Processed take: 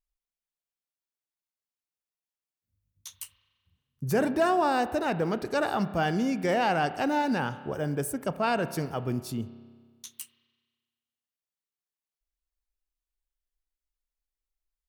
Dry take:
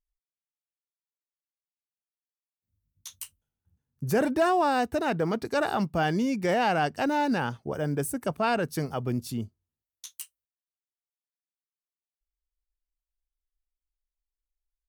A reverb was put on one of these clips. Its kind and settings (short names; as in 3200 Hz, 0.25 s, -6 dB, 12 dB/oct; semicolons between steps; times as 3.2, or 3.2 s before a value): spring tank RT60 1.6 s, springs 30 ms, chirp 20 ms, DRR 12.5 dB; gain -1 dB